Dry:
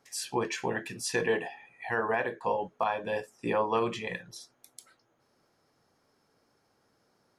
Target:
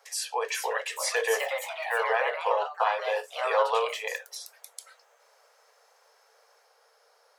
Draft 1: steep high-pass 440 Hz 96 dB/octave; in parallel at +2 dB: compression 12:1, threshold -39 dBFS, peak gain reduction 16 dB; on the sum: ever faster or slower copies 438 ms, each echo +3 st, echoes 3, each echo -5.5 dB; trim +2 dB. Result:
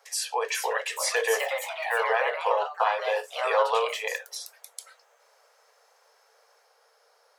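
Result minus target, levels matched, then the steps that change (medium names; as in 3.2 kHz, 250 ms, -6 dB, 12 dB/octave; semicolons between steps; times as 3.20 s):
compression: peak gain reduction -8.5 dB
change: compression 12:1, threshold -48.5 dBFS, peak gain reduction 25 dB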